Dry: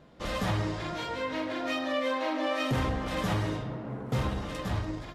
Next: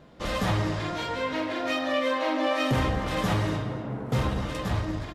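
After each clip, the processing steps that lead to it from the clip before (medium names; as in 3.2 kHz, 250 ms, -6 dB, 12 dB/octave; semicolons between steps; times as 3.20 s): echo from a far wall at 41 m, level -11 dB; trim +3.5 dB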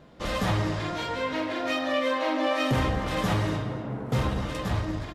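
no audible change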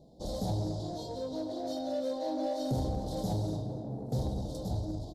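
elliptic band-stop 780–4100 Hz, stop band 40 dB; in parallel at -7 dB: saturation -31.5 dBFS, distortion -8 dB; on the sum: trim -7 dB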